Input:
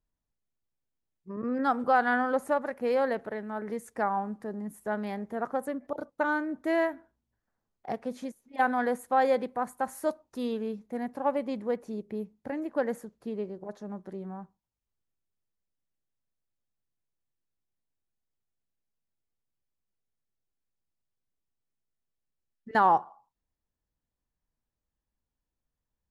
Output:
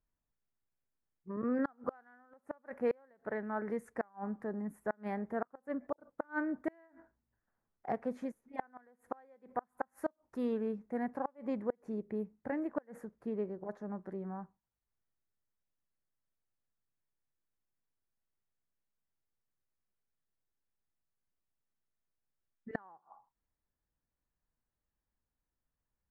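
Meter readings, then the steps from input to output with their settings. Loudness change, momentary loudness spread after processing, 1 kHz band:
-9.0 dB, 11 LU, -15.0 dB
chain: flipped gate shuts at -20 dBFS, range -34 dB; resonant high shelf 2500 Hz -10.5 dB, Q 1.5; gain -2.5 dB

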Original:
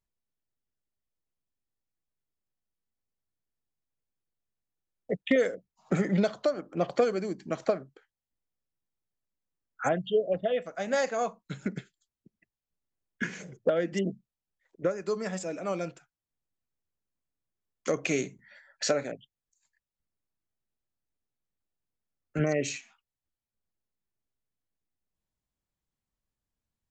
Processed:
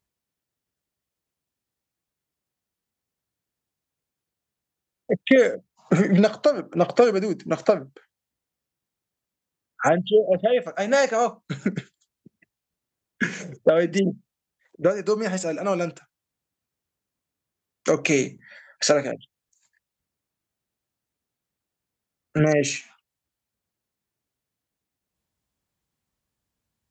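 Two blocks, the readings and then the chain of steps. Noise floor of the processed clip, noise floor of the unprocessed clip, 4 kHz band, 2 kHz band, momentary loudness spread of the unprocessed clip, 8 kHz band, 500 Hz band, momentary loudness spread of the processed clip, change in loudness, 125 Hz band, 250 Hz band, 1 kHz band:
under -85 dBFS, under -85 dBFS, +8.0 dB, +8.0 dB, 11 LU, +8.0 dB, +8.0 dB, 11 LU, +8.0 dB, +8.0 dB, +8.0 dB, +8.0 dB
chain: HPF 62 Hz; gain +8 dB

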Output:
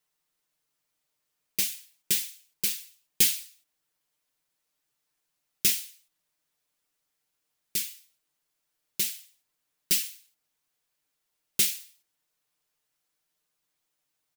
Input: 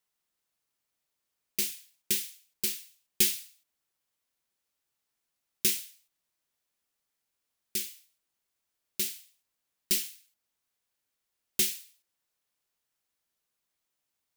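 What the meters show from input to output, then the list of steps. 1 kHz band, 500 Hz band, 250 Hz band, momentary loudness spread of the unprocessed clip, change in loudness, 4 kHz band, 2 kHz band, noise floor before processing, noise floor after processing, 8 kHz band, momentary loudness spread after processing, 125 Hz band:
n/a, -3.0 dB, -1.0 dB, 16 LU, +3.0 dB, +3.0 dB, +3.0 dB, -84 dBFS, -81 dBFS, +3.0 dB, 17 LU, +3.0 dB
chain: comb 6.6 ms; gain +1.5 dB

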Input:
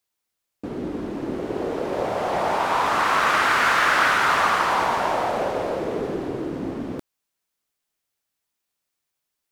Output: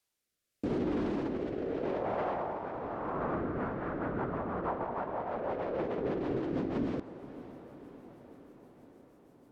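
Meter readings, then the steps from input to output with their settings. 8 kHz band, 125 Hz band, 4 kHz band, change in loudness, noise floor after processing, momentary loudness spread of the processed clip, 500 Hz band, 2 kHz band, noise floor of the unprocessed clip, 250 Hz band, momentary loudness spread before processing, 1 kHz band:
under -30 dB, -3.5 dB, under -25 dB, -13.0 dB, -84 dBFS, 17 LU, -8.0 dB, -23.5 dB, -81 dBFS, -4.0 dB, 13 LU, -16.5 dB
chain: treble ducked by the level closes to 340 Hz, closed at -15.5 dBFS; negative-ratio compressor -30 dBFS, ratio -1; limiter -23.5 dBFS, peak gain reduction 7 dB; rotary speaker horn 0.8 Hz, later 6.3 Hz, at 3.1; diffused feedback echo 0.557 s, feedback 65%, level -15 dB

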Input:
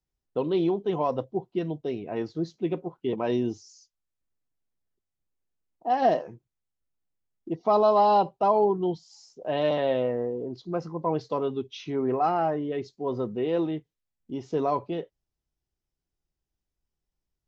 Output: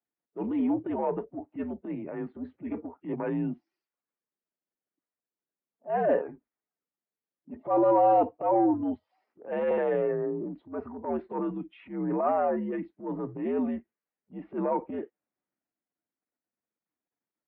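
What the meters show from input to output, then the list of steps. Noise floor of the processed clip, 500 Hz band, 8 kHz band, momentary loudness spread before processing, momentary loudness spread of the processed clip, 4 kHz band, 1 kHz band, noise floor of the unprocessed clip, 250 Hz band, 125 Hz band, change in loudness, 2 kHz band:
under -85 dBFS, -3.0 dB, n/a, 13 LU, 16 LU, under -15 dB, -3.5 dB, under -85 dBFS, 0.0 dB, -5.5 dB, -2.0 dB, -2.0 dB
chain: bin magnitudes rounded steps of 15 dB; transient shaper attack -11 dB, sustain +4 dB; mistuned SSB -81 Hz 280–2300 Hz

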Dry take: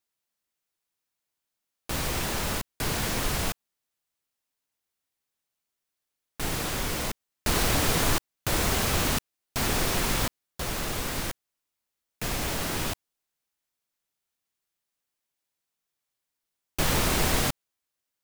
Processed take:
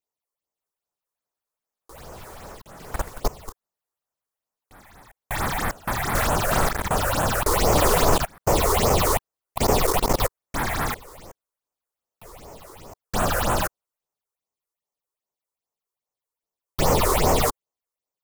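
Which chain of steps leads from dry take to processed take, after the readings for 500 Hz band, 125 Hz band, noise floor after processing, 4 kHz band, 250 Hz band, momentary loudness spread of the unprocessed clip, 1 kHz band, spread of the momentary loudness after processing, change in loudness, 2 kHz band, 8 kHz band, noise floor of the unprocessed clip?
+10.0 dB, +4.5 dB, under -85 dBFS, -0.5 dB, +3.5 dB, 11 LU, +9.5 dB, 15 LU, +5.0 dB, +2.5 dB, +2.0 dB, -85 dBFS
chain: band shelf 670 Hz +8.5 dB; notch 1600 Hz, Q 11; level quantiser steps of 24 dB; phaser stages 6, 2.5 Hz, lowest notch 170–3800 Hz; echoes that change speed 0.56 s, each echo +5 st, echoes 2; gain +6.5 dB

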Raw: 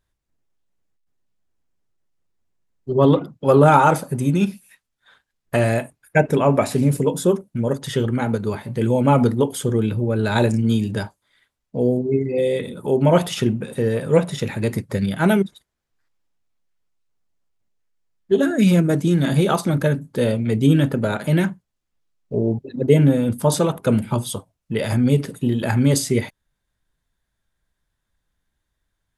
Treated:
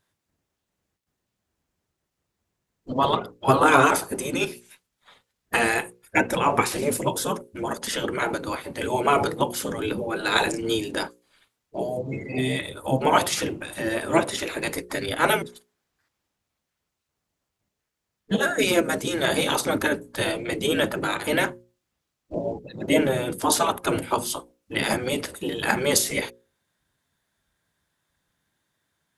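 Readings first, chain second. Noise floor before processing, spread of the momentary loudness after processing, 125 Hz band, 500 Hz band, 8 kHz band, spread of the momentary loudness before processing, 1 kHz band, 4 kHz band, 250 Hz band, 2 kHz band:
-78 dBFS, 10 LU, -14.5 dB, -5.5 dB, +3.0 dB, 9 LU, 0.0 dB, +4.0 dB, -8.5 dB, +3.5 dB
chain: spectral gate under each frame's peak -10 dB weak; notches 60/120/180/240/300/360/420/480/540 Hz; gain +5.5 dB

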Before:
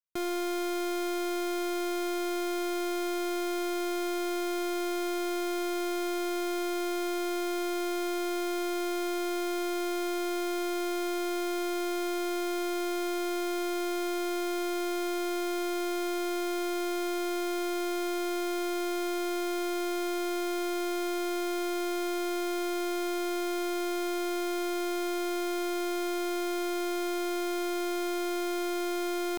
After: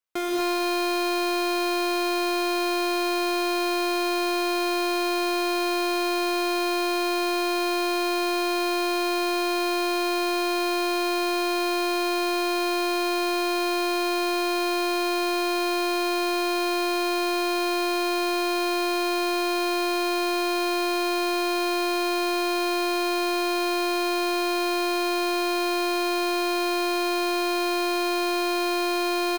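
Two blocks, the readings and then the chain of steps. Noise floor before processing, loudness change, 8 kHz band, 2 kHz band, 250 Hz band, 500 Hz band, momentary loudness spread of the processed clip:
-31 dBFS, +7.0 dB, +5.0 dB, +10.0 dB, +5.0 dB, +5.5 dB, 0 LU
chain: tone controls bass -14 dB, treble -5 dB; on a send: echo 0.232 s -13 dB; on the sum: non-linear reverb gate 0.27 s rising, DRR -3 dB; gain +7.5 dB

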